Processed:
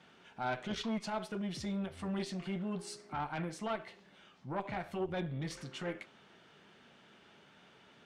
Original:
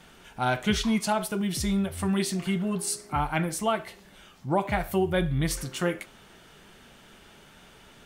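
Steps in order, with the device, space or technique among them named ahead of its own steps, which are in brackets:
valve radio (band-pass filter 130–4,600 Hz; tube saturation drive 18 dB, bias 0.35; saturating transformer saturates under 410 Hz)
level −6.5 dB

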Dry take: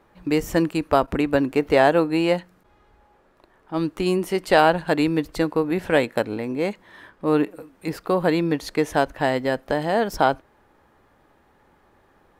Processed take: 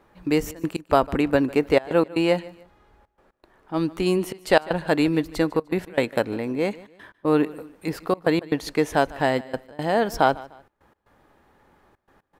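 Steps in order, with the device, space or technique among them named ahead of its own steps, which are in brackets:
trance gate with a delay (gate pattern "xxxx.x.xxx" 118 BPM −24 dB; repeating echo 150 ms, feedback 32%, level −20.5 dB)

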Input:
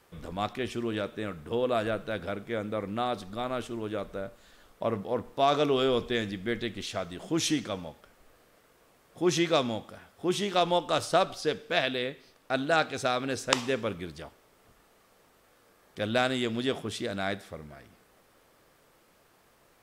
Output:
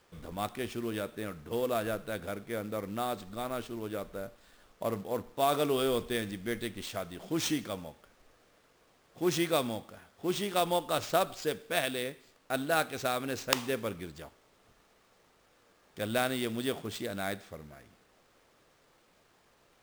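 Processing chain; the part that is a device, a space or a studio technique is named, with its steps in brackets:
early companding sampler (sample-rate reduction 12,000 Hz, jitter 0%; log-companded quantiser 6 bits)
level −3.5 dB

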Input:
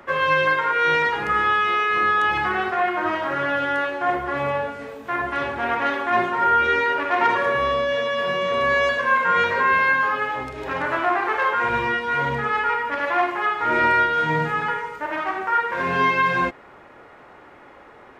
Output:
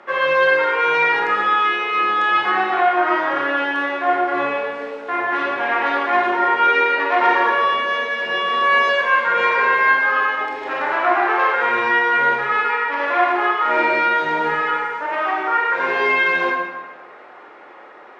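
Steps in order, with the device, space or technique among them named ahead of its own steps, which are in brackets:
supermarket ceiling speaker (band-pass filter 330–5,300 Hz; convolution reverb RT60 1.3 s, pre-delay 21 ms, DRR −1.5 dB)
level +1 dB

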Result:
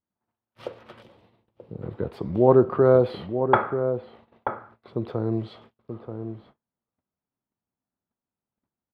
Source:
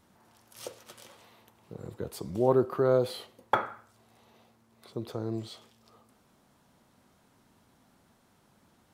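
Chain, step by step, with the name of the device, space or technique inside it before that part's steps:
shout across a valley (high-frequency loss of the air 420 metres; slap from a distant wall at 160 metres, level −8 dB)
noise gate −59 dBFS, range −35 dB
0:01.02–0:01.82: parametric band 1,400 Hz −12 dB 2.3 octaves
level +8.5 dB

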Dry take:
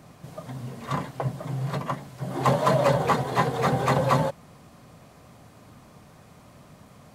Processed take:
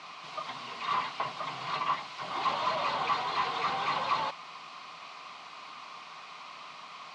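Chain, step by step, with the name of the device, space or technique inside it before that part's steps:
first difference
overdrive pedal into a guitar cabinet (mid-hump overdrive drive 33 dB, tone 7,600 Hz, clips at −21.5 dBFS; loudspeaker in its box 110–3,700 Hz, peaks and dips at 160 Hz +6 dB, 540 Hz −8 dB, 1,100 Hz +7 dB, 1,700 Hz −10 dB, 3,400 Hz −4 dB)

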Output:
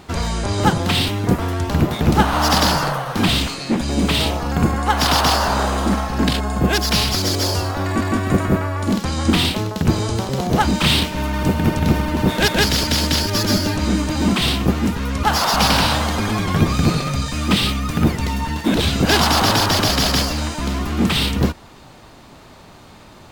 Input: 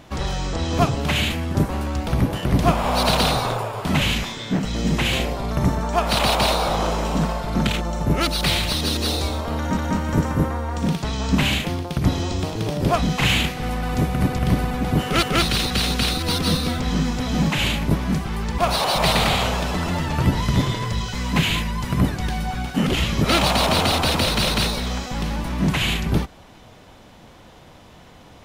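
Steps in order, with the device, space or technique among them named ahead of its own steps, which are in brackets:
nightcore (speed change +22%)
level +3 dB

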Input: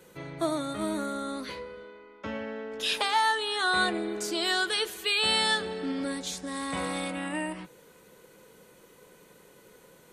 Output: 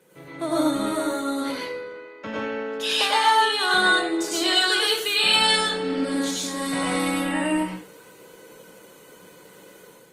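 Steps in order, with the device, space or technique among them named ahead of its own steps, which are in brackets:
far-field microphone of a smart speaker (convolution reverb RT60 0.40 s, pre-delay 90 ms, DRR −3.5 dB; high-pass filter 110 Hz 24 dB per octave; automatic gain control gain up to 6 dB; level −3.5 dB; Opus 24 kbit/s 48,000 Hz)

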